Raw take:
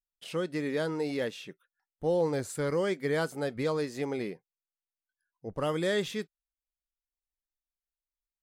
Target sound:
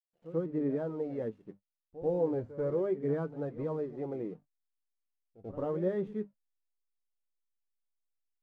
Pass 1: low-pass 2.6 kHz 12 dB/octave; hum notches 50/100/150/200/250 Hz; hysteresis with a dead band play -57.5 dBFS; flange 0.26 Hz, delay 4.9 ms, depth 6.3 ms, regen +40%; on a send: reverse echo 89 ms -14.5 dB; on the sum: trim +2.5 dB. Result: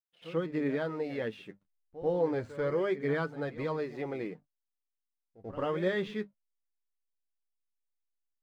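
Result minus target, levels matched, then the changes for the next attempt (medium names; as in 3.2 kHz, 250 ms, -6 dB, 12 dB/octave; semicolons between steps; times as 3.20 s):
2 kHz band +14.0 dB
change: low-pass 700 Hz 12 dB/octave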